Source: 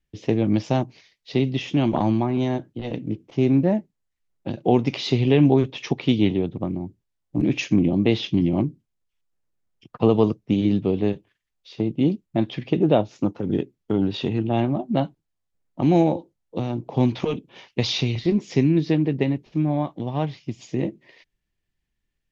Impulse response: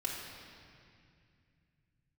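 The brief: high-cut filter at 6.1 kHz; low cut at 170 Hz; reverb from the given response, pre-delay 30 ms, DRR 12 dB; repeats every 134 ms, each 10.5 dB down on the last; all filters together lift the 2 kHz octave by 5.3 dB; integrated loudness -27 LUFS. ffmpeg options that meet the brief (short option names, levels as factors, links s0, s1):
-filter_complex "[0:a]highpass=170,lowpass=6100,equalizer=f=2000:t=o:g=7,aecho=1:1:134|268|402:0.299|0.0896|0.0269,asplit=2[s0][s1];[1:a]atrim=start_sample=2205,adelay=30[s2];[s1][s2]afir=irnorm=-1:irlink=0,volume=0.178[s3];[s0][s3]amix=inputs=2:normalize=0,volume=0.631"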